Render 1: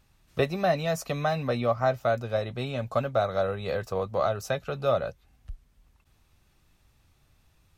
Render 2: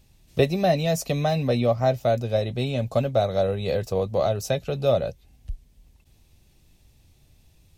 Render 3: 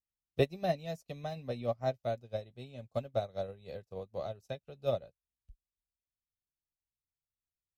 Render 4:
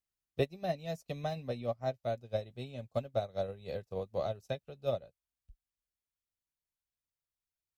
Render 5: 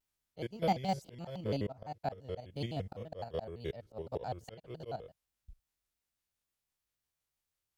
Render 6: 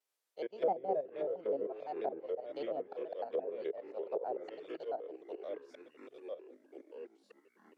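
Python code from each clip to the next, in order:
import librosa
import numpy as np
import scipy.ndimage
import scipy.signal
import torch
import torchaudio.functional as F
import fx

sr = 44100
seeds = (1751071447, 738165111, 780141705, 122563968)

y1 = fx.peak_eq(x, sr, hz=1300.0, db=-14.5, octaves=1.1)
y1 = F.gain(torch.from_numpy(y1), 7.0).numpy()
y2 = fx.upward_expand(y1, sr, threshold_db=-41.0, expansion=2.5)
y2 = F.gain(torch.from_numpy(y2), -7.0).numpy()
y3 = fx.rider(y2, sr, range_db=5, speed_s=0.5)
y4 = fx.spec_steps(y3, sr, hold_ms=50)
y4 = fx.auto_swell(y4, sr, attack_ms=274.0)
y4 = fx.vibrato_shape(y4, sr, shape='square', rate_hz=5.9, depth_cents=250.0)
y4 = F.gain(torch.from_numpy(y4), 6.5).numpy()
y5 = fx.echo_pitch(y4, sr, ms=93, semitones=-4, count=3, db_per_echo=-6.0)
y5 = fx.ladder_highpass(y5, sr, hz=370.0, resonance_pct=40)
y5 = fx.env_lowpass_down(y5, sr, base_hz=650.0, full_db=-39.0)
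y5 = F.gain(torch.from_numpy(y5), 7.5).numpy()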